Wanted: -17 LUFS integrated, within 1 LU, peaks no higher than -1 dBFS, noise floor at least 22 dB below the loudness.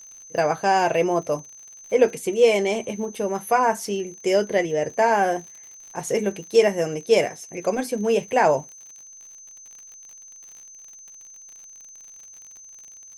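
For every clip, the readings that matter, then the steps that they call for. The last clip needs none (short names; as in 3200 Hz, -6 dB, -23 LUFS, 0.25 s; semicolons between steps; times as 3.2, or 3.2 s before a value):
ticks 54/s; steady tone 6200 Hz; tone level -42 dBFS; loudness -22.0 LUFS; peak -4.5 dBFS; loudness target -17.0 LUFS
-> de-click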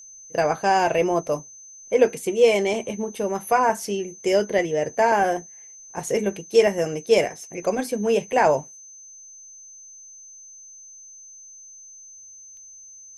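ticks 0.076/s; steady tone 6200 Hz; tone level -42 dBFS
-> notch 6200 Hz, Q 30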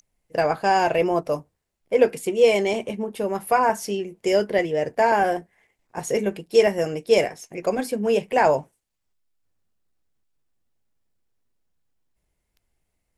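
steady tone none; loudness -22.0 LUFS; peak -4.5 dBFS; loudness target -17.0 LUFS
-> gain +5 dB; limiter -1 dBFS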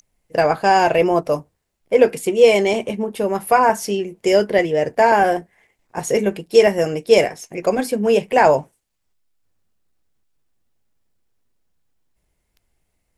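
loudness -17.5 LUFS; peak -1.0 dBFS; noise floor -72 dBFS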